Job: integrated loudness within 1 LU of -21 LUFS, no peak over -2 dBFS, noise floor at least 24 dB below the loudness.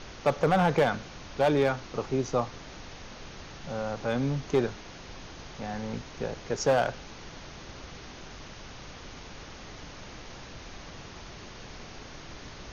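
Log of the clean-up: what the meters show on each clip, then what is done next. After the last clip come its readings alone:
clipped samples 0.4%; clipping level -17.0 dBFS; noise floor -46 dBFS; noise floor target -53 dBFS; loudness -29.0 LUFS; peak level -17.0 dBFS; loudness target -21.0 LUFS
-> clip repair -17 dBFS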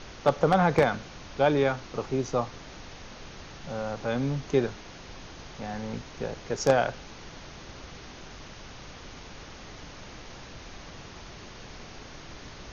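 clipped samples 0.0%; noise floor -46 dBFS; noise floor target -52 dBFS
-> noise print and reduce 6 dB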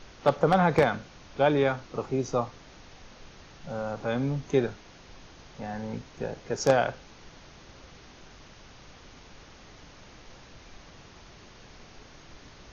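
noise floor -52 dBFS; loudness -28.0 LUFS; peak level -8.0 dBFS; loudness target -21.0 LUFS
-> trim +7 dB; peak limiter -2 dBFS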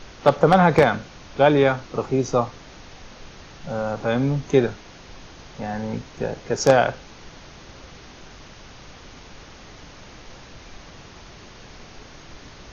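loudness -21.0 LUFS; peak level -2.0 dBFS; noise floor -45 dBFS

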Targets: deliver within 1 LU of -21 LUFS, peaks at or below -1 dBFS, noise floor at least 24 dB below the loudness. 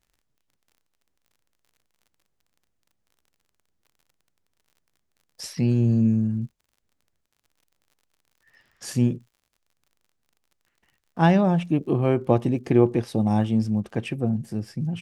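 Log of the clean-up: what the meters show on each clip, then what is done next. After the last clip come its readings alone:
tick rate 41 per s; loudness -23.0 LUFS; peak level -4.5 dBFS; loudness target -21.0 LUFS
-> de-click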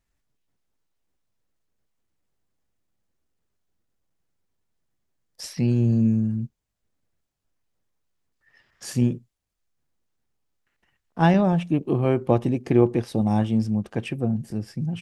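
tick rate 0.067 per s; loudness -23.0 LUFS; peak level -4.5 dBFS; loudness target -21.0 LUFS
-> trim +2 dB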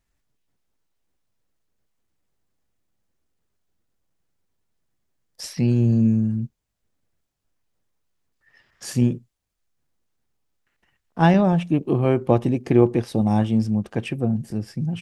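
loudness -21.0 LUFS; peak level -2.5 dBFS; noise floor -77 dBFS

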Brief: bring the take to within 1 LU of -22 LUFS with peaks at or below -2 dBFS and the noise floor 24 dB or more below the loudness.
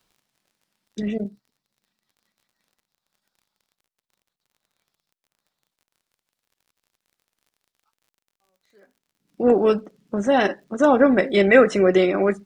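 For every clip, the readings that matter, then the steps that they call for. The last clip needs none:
tick rate 35 per s; loudness -18.5 LUFS; peak level -2.0 dBFS; loudness target -22.0 LUFS
-> de-click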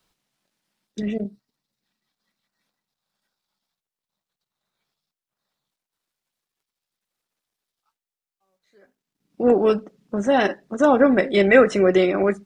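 tick rate 0.16 per s; loudness -18.5 LUFS; peak level -2.0 dBFS; loudness target -22.0 LUFS
-> trim -3.5 dB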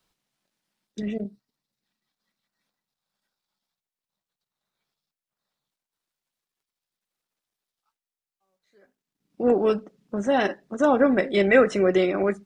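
loudness -22.0 LUFS; peak level -5.5 dBFS; noise floor -92 dBFS

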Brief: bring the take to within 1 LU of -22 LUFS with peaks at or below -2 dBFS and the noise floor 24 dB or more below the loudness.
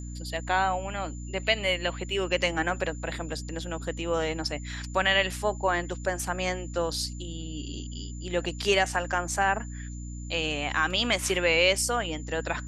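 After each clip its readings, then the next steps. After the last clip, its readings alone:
hum 60 Hz; highest harmonic 300 Hz; hum level -35 dBFS; steady tone 7.1 kHz; tone level -48 dBFS; loudness -28.0 LUFS; peak level -9.5 dBFS; loudness target -22.0 LUFS
-> hum notches 60/120/180/240/300 Hz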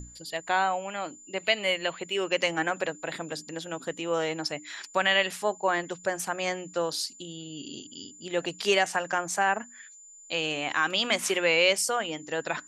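hum not found; steady tone 7.1 kHz; tone level -48 dBFS
-> band-stop 7.1 kHz, Q 30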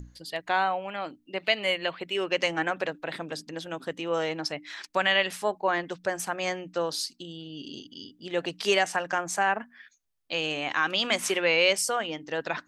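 steady tone not found; loudness -28.0 LUFS; peak level -9.5 dBFS; loudness target -22.0 LUFS
-> trim +6 dB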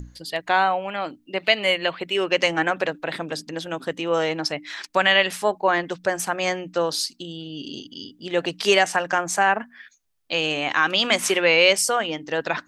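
loudness -22.0 LUFS; peak level -3.5 dBFS; noise floor -59 dBFS

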